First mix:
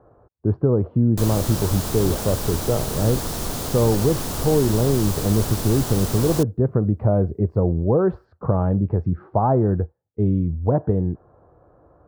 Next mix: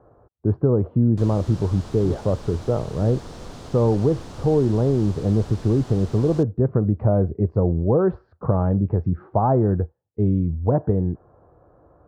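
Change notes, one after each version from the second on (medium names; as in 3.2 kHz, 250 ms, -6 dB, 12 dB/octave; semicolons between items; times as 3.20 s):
background -9.5 dB; master: add distance through air 100 m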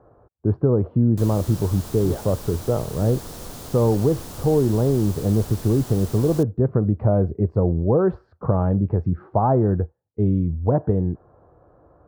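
master: remove distance through air 100 m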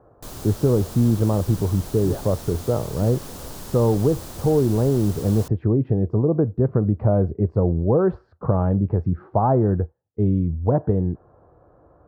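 background: entry -0.95 s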